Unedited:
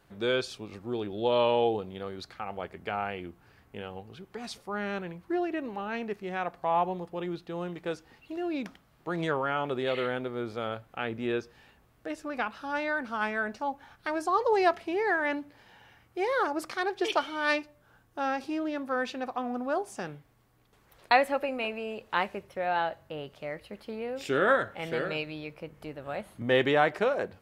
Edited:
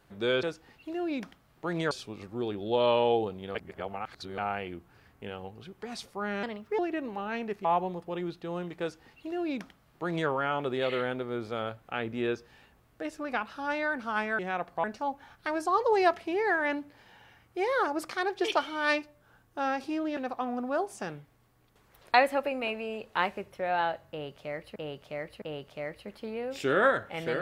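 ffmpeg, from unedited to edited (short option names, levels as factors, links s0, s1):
-filter_complex "[0:a]asplit=13[s0][s1][s2][s3][s4][s5][s6][s7][s8][s9][s10][s11][s12];[s0]atrim=end=0.432[s13];[s1]atrim=start=7.858:end=9.342[s14];[s2]atrim=start=0.428:end=2.072[s15];[s3]atrim=start=2.068:end=2.902,asetpts=PTS-STARTPTS,areverse[s16];[s4]atrim=start=2.898:end=4.954[s17];[s5]atrim=start=4.95:end=5.39,asetpts=PTS-STARTPTS,asetrate=54243,aresample=44100[s18];[s6]atrim=start=5.386:end=6.252[s19];[s7]atrim=start=6.698:end=13.442[s20];[s8]atrim=start=6.248:end=6.702[s21];[s9]atrim=start=13.438:end=18.772[s22];[s10]atrim=start=19.138:end=23.732[s23];[s11]atrim=start=23.068:end=23.732[s24];[s12]atrim=start=23.068[s25];[s13][s14]acrossfade=d=0.004:c1=hsin:c2=hsin[s26];[s26][s15]acrossfade=d=0.004:c1=hsin:c2=hsin[s27];[s27][s16]acrossfade=d=0.004:c1=hsin:c2=hsin[s28];[s28][s17]acrossfade=d=0.004:c1=hsin:c2=hsin[s29];[s29][s18]acrossfade=d=0.004:c1=hsin:c2=hsin[s30];[s30][s19]acrossfade=d=0.004:c1=hsin:c2=hsin[s31];[s31][s20]acrossfade=d=0.004:c1=hsin:c2=hsin[s32];[s32][s21]acrossfade=d=0.004:c1=hsin:c2=hsin[s33];[s33][s22]acrossfade=d=0.004:c1=hsin:c2=hsin[s34];[s34][s23]acrossfade=d=0.004:c1=hsin:c2=hsin[s35];[s35][s24]acrossfade=d=0.004:c1=hsin:c2=hsin[s36];[s36][s25]acrossfade=d=0.004:c1=hsin:c2=hsin"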